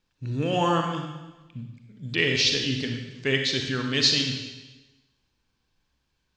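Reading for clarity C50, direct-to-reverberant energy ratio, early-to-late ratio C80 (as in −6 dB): 4.0 dB, 3.0 dB, 6.0 dB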